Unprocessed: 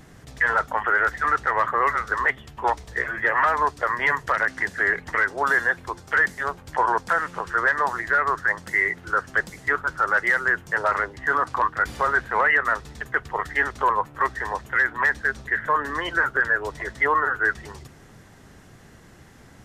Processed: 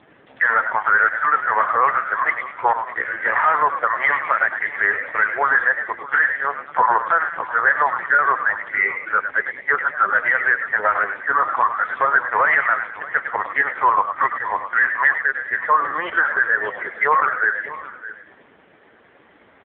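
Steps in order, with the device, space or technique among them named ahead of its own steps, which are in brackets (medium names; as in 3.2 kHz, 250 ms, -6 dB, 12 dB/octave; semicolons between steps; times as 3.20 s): 9.59–10.14 s: comb 5.1 ms, depth 33%; frequency-shifting echo 103 ms, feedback 38%, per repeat +83 Hz, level -8 dB; satellite phone (band-pass 350–3400 Hz; delay 615 ms -16 dB; trim +5.5 dB; AMR-NB 5.15 kbps 8 kHz)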